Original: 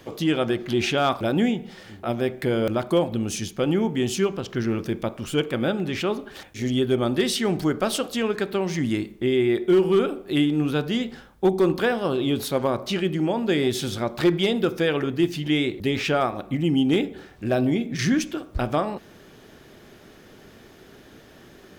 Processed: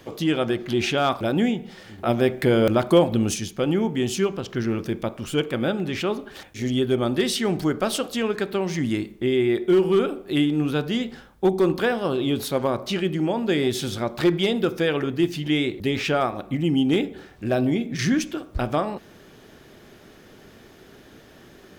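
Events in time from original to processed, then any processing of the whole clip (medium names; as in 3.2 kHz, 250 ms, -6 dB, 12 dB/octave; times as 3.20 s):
1.98–3.34 s: gain +4.5 dB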